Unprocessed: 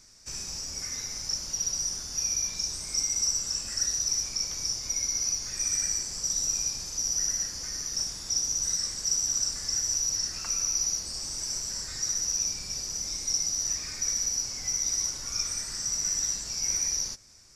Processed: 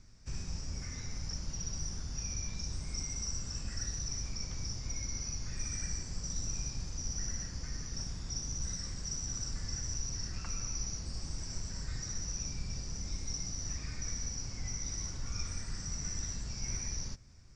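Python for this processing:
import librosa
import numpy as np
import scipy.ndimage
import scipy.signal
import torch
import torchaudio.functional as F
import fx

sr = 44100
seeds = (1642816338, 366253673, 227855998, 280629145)

y = scipy.signal.sosfilt(scipy.signal.butter(4, 8600.0, 'lowpass', fs=sr, output='sos'), x)
y = fx.bass_treble(y, sr, bass_db=14, treble_db=-10)
y = F.gain(torch.from_numpy(y), -5.0).numpy()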